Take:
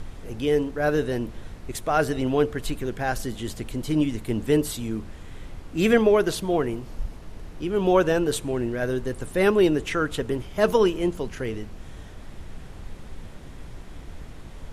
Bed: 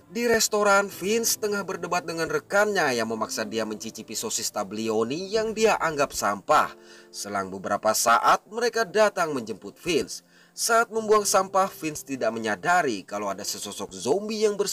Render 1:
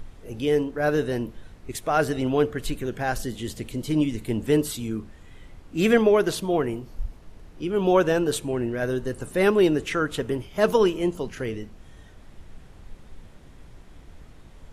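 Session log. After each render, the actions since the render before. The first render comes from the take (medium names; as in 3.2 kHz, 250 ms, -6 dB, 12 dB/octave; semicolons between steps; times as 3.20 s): noise print and reduce 7 dB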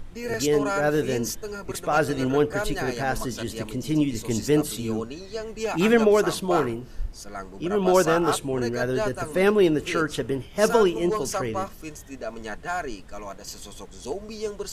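add bed -8 dB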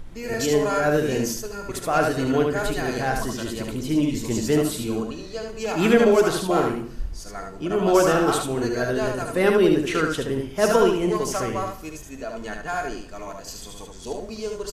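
on a send: delay 74 ms -4.5 dB; on the sum: gated-style reverb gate 270 ms falling, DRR 11 dB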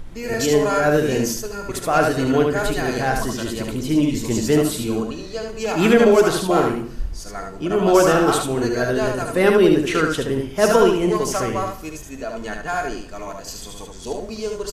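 trim +3.5 dB; peak limiter -3 dBFS, peak gain reduction 1.5 dB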